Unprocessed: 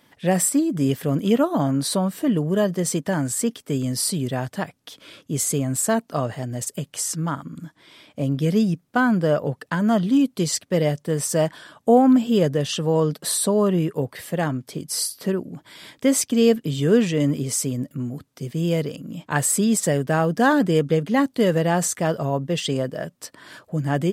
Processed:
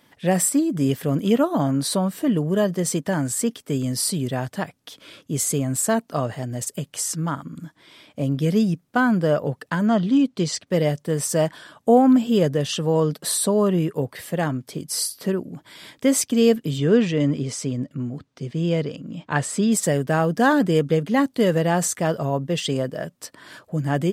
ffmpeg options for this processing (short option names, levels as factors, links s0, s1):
-filter_complex "[0:a]asettb=1/sr,asplit=3[s0][s1][s2];[s0]atrim=end=9.864[s3];[s1]atrim=start=9.86:end=10.67,asetpts=PTS-STARTPTS,afade=t=in:d=0.004:c=qsin,afade=t=out:st=0.806:d=0.004:c=qsin,lowpass=6100[s4];[s2]atrim=start=10.666[s5];[s3][s4]acrossfade=d=0.004:c1=hsin:c2=qsin[s6];[s6][s5]acrossfade=d=0.004:c1=qsin:c2=hsin,asettb=1/sr,asplit=3[s7][s8][s9];[s7]atrim=end=16.784[s10];[s8]atrim=start=16.78:end=19.72,asetpts=PTS-STARTPTS,afade=t=in:d=0.004:c=qsin,afade=t=out:st=2.936:d=0.004:c=qsin,lowpass=5300[s11];[s9]atrim=start=19.716[s12];[s10][s11]acrossfade=d=0.004:c1=hsin:c2=qsin[s13];[s13][s12]acrossfade=d=0.004:c1=qsin:c2=hsin"